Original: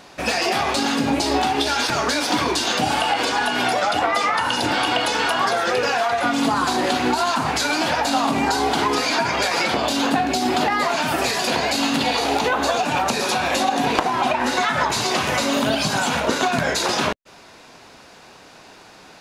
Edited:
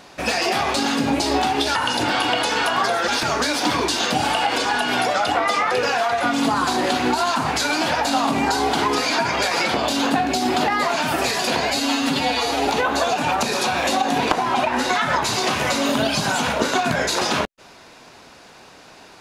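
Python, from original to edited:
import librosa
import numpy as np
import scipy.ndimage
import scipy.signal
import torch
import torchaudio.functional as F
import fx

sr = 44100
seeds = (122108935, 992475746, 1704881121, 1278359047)

y = fx.edit(x, sr, fx.move(start_s=4.38, length_s=1.33, to_s=1.75),
    fx.stretch_span(start_s=11.7, length_s=0.65, factor=1.5), tone=tone)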